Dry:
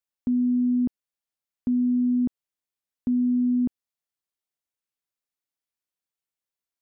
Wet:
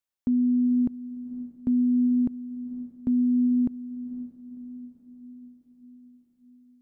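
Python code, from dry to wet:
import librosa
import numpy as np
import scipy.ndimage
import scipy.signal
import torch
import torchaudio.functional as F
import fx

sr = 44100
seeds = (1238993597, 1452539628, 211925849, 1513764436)

y = fx.quant_float(x, sr, bits=8)
y = fx.echo_diffused(y, sr, ms=516, feedback_pct=55, wet_db=-14.5)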